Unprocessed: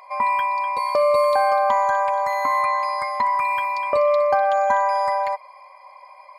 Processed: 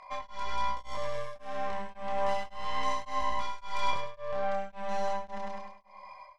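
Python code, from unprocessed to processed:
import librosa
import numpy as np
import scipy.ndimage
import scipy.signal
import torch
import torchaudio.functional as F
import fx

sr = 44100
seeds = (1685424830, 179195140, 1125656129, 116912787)

y = fx.tracing_dist(x, sr, depth_ms=0.27)
y = scipy.signal.sosfilt(scipy.signal.butter(2, 6100.0, 'lowpass', fs=sr, output='sos'), y)
y = fx.bass_treble(y, sr, bass_db=7, treble_db=3)
y = fx.over_compress(y, sr, threshold_db=-24.0, ratio=-1.0)
y = fx.chorus_voices(y, sr, voices=2, hz=0.32, base_ms=26, depth_ms=4.8, mix_pct=45)
y = fx.echo_feedback(y, sr, ms=102, feedback_pct=59, wet_db=-7)
y = y * np.abs(np.cos(np.pi * 1.8 * np.arange(len(y)) / sr))
y = y * 10.0 ** (-6.5 / 20.0)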